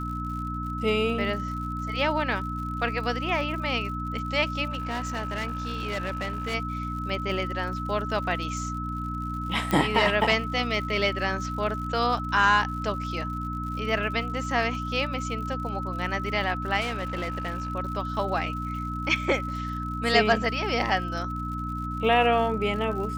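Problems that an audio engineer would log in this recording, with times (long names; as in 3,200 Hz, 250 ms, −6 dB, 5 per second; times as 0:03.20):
surface crackle 96 per second −37 dBFS
mains hum 60 Hz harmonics 5 −33 dBFS
whistle 1,300 Hz −33 dBFS
0:04.70–0:06.55: clipping −26 dBFS
0:09.71: click −12 dBFS
0:16.80–0:17.70: clipping −26 dBFS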